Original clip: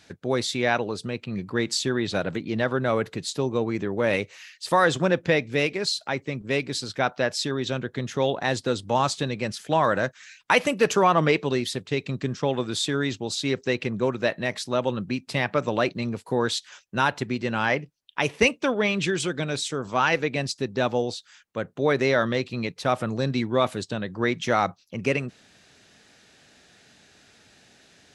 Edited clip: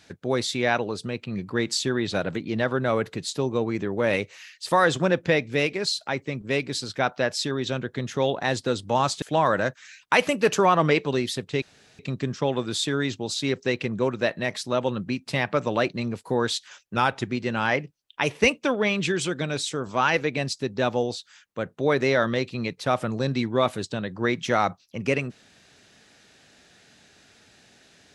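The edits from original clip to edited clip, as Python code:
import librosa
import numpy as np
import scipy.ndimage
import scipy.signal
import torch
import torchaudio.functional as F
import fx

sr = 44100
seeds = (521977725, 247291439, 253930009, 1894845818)

y = fx.edit(x, sr, fx.cut(start_s=9.22, length_s=0.38),
    fx.insert_room_tone(at_s=12.0, length_s=0.37),
    fx.speed_span(start_s=16.97, length_s=0.31, speed=0.93), tone=tone)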